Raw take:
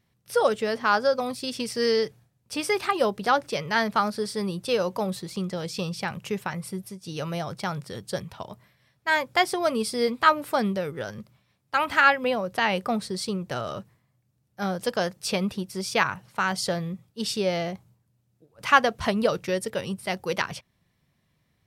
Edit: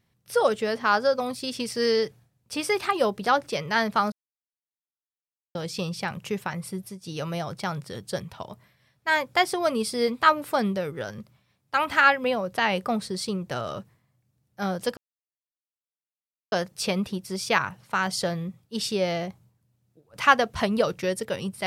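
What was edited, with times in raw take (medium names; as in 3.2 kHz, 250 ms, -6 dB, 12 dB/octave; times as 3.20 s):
4.12–5.55 s: mute
14.97 s: insert silence 1.55 s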